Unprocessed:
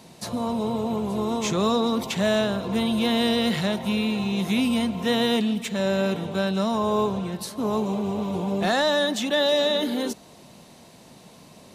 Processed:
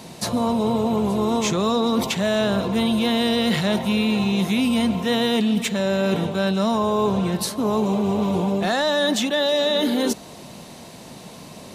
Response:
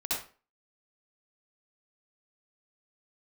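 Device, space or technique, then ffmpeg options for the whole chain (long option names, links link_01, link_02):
compression on the reversed sound: -af "areverse,acompressor=threshold=-26dB:ratio=6,areverse,volume=8.5dB"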